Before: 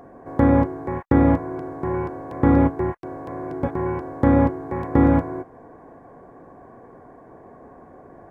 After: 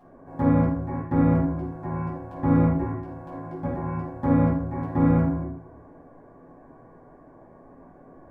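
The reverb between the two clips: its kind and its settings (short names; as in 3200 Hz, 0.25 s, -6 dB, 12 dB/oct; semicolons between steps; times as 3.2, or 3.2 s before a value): shoebox room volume 770 m³, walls furnished, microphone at 8.7 m; gain -16.5 dB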